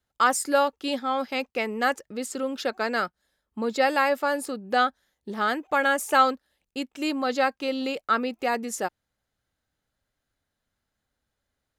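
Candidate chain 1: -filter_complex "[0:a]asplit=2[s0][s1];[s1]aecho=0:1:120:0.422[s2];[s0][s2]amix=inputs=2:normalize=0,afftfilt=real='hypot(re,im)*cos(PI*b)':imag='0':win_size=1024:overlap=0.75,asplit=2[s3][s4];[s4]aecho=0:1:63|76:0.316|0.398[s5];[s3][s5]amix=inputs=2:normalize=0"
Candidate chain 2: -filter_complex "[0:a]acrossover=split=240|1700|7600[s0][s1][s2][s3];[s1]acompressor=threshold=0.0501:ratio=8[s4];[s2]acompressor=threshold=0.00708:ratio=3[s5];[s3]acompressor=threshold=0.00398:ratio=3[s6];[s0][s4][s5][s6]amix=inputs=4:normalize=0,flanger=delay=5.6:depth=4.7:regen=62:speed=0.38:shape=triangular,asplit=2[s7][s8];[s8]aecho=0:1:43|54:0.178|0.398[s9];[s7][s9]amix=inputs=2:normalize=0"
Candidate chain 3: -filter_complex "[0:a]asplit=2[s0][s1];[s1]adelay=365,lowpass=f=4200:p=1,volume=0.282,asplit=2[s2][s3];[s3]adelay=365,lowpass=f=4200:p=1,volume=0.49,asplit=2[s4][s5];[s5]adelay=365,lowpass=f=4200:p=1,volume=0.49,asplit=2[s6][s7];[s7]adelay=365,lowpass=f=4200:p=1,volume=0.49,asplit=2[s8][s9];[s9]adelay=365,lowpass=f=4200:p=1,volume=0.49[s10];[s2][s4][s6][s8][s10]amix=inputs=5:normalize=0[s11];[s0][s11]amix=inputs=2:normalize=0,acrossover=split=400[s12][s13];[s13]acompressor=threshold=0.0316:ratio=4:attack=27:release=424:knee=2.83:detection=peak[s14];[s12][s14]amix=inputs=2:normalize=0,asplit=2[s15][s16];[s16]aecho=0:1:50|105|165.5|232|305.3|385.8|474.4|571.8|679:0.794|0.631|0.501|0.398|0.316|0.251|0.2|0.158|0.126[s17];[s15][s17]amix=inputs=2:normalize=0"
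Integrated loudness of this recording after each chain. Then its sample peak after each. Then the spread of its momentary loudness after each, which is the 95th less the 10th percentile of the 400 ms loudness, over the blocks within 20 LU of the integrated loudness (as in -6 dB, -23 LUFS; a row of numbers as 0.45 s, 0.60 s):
-29.5 LUFS, -34.5 LUFS, -26.5 LUFS; -8.5 dBFS, -18.5 dBFS, -11.5 dBFS; 11 LU, 7 LU, 6 LU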